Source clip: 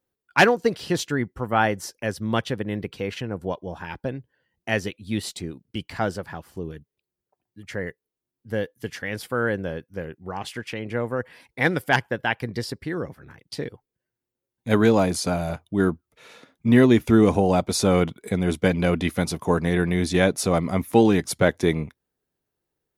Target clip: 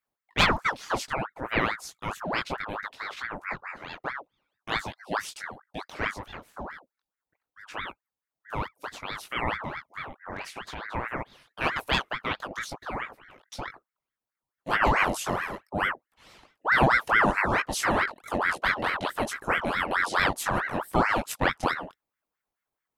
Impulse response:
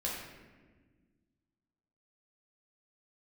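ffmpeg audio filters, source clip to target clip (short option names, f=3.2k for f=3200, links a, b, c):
-af "flanger=delay=16.5:depth=6.2:speed=0.62,aeval=exprs='val(0)*sin(2*PI*1100*n/s+1100*0.65/4.6*sin(2*PI*4.6*n/s))':c=same"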